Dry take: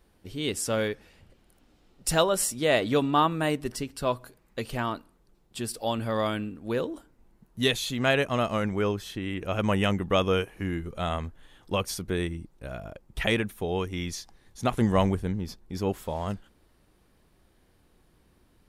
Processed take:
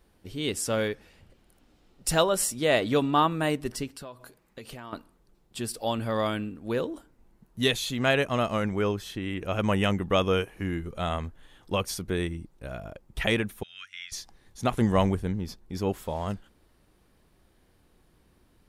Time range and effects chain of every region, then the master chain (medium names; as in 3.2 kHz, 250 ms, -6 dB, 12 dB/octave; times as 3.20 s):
3.88–4.93 s: bass shelf 81 Hz -9.5 dB + compression 8:1, threshold -38 dBFS
13.63–14.12 s: elliptic high-pass 1.4 kHz + distance through air 79 m
whole clip: none